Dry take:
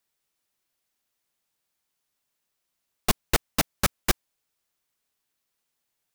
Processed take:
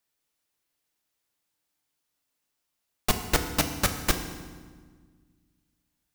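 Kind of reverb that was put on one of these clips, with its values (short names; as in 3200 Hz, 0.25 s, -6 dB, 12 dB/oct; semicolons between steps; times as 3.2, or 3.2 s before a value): FDN reverb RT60 1.5 s, low-frequency decay 1.55×, high-frequency decay 0.8×, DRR 5.5 dB; gain -1.5 dB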